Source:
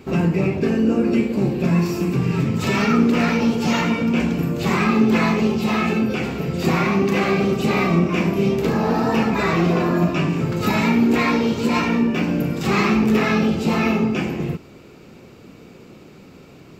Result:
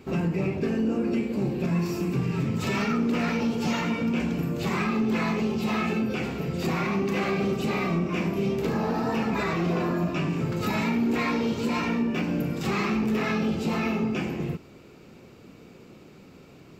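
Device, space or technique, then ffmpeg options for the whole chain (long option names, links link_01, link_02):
soft clipper into limiter: -af "asoftclip=type=tanh:threshold=-7.5dB,alimiter=limit=-12.5dB:level=0:latency=1:release=147,volume=-5.5dB"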